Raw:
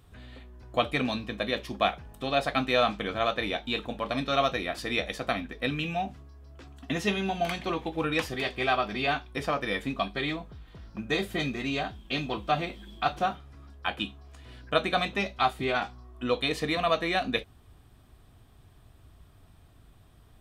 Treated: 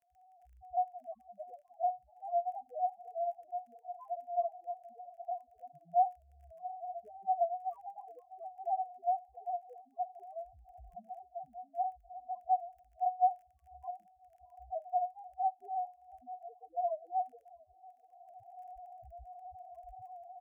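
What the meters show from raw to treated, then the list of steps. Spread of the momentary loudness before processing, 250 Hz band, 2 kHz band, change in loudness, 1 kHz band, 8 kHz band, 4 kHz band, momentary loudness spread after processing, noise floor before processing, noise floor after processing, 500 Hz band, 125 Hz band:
11 LU, below −35 dB, below −40 dB, −8.0 dB, −2.5 dB, below −30 dB, below −40 dB, 18 LU, −57 dBFS, −67 dBFS, −9.5 dB, below −25 dB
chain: adaptive Wiener filter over 15 samples
camcorder AGC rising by 25 dB per second
formant resonators in series a
tape wow and flutter 17 cents
spectral peaks only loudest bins 1
surface crackle 19 per second −62 dBFS
phaser with its sweep stopped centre 1,100 Hz, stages 6
on a send: repeating echo 685 ms, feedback 55%, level −24 dB
on the sum: level +6.5 dB

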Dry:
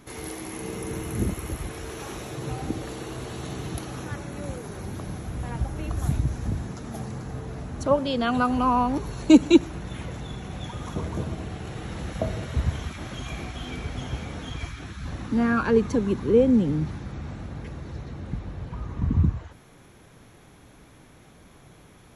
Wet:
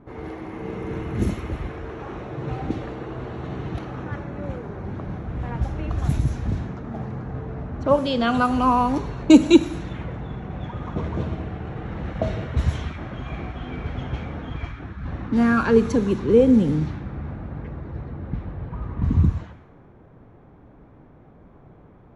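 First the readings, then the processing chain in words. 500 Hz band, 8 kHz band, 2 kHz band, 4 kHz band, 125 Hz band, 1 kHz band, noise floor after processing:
+3.0 dB, −3.5 dB, +2.5 dB, +1.5 dB, +3.0 dB, +3.0 dB, −50 dBFS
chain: low-pass that shuts in the quiet parts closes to 930 Hz, open at −18 dBFS
four-comb reverb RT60 0.77 s, combs from 27 ms, DRR 14 dB
level +3 dB

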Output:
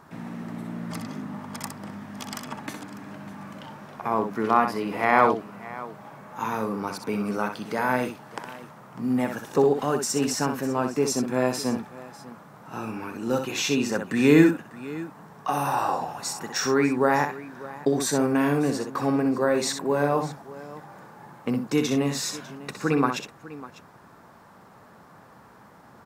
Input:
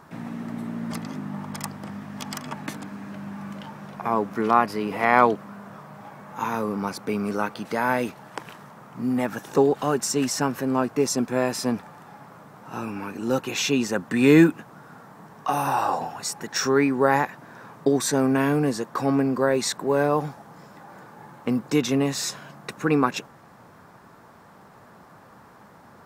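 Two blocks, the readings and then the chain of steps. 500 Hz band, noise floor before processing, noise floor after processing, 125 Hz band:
−1.0 dB, −50 dBFS, −51 dBFS, −1.5 dB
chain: multi-tap delay 63/599 ms −7/−17.5 dB
level −2 dB

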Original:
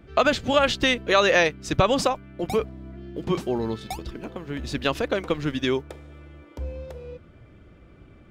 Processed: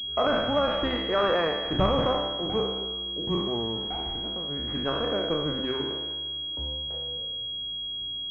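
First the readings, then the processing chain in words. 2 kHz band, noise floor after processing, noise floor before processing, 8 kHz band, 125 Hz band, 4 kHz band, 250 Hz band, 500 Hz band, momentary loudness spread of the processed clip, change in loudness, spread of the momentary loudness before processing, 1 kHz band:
−9.0 dB, −34 dBFS, −51 dBFS, below −25 dB, −3.0 dB, +4.5 dB, −3.0 dB, −3.0 dB, 7 LU, −3.5 dB, 18 LU, −3.5 dB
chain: peak hold with a decay on every bin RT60 1.33 s
hum removal 130.5 Hz, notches 34
switching amplifier with a slow clock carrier 3,300 Hz
level −6.5 dB

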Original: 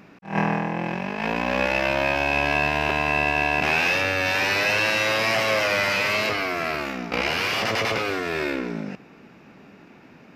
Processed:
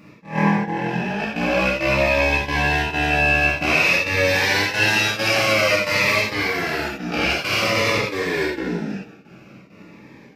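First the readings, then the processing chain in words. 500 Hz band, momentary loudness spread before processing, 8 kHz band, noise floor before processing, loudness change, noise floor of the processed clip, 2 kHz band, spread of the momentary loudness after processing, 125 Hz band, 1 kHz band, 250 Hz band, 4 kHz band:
+3.0 dB, 8 LU, +5.5 dB, −49 dBFS, +3.5 dB, −46 dBFS, +3.5 dB, 8 LU, +6.0 dB, +1.0 dB, +4.5 dB, +3.5 dB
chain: gate pattern "x.xxx.xxxx" 133 BPM −12 dB
reverb whose tail is shaped and stops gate 110 ms flat, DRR −5 dB
phaser whose notches keep moving one way falling 0.51 Hz

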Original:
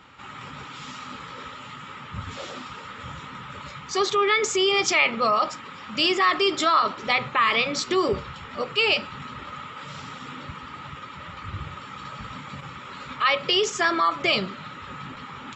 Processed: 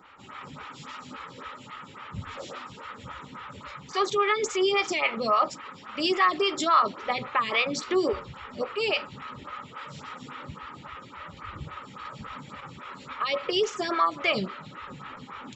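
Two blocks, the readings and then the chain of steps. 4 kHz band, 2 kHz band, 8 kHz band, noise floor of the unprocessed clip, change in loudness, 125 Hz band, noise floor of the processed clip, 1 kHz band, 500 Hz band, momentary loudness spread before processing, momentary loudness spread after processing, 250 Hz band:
−6.5 dB, −5.5 dB, −7.0 dB, −41 dBFS, −4.0 dB, −4.5 dB, −47 dBFS, −2.5 dB, −2.0 dB, 18 LU, 18 LU, −2.0 dB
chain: phaser with staggered stages 3.6 Hz

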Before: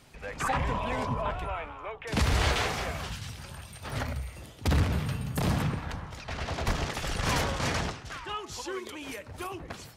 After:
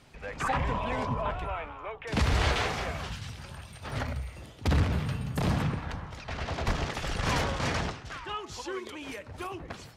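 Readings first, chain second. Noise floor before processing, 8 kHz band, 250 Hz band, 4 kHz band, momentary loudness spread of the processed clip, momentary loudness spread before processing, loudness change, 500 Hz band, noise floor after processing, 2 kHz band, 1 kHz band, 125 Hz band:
−48 dBFS, −4.0 dB, 0.0 dB, −1.5 dB, 13 LU, 12 LU, −0.5 dB, 0.0 dB, −48 dBFS, −0.5 dB, 0.0 dB, 0.0 dB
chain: high-shelf EQ 9,100 Hz −11.5 dB

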